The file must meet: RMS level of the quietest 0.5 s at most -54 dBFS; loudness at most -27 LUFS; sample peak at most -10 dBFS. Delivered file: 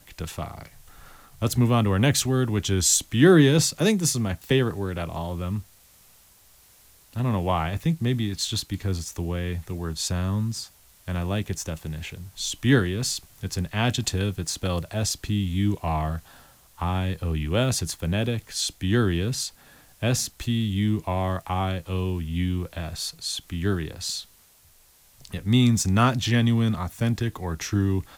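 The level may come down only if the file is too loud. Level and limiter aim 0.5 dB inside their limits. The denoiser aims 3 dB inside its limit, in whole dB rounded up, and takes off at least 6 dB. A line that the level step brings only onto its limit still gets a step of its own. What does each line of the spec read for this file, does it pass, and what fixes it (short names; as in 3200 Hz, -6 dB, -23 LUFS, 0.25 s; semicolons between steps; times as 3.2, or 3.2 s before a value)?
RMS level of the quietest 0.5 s -57 dBFS: OK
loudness -25.0 LUFS: fail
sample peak -5.5 dBFS: fail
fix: gain -2.5 dB; limiter -10.5 dBFS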